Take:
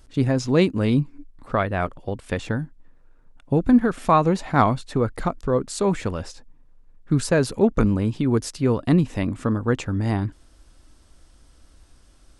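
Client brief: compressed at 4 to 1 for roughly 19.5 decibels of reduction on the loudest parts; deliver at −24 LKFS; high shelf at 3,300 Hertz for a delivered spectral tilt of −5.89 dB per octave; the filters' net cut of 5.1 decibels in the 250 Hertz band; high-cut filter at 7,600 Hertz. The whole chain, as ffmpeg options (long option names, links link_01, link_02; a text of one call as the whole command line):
ffmpeg -i in.wav -af "lowpass=7600,equalizer=frequency=250:width_type=o:gain=-6.5,highshelf=frequency=3300:gain=-9,acompressor=threshold=-39dB:ratio=4,volume=17.5dB" out.wav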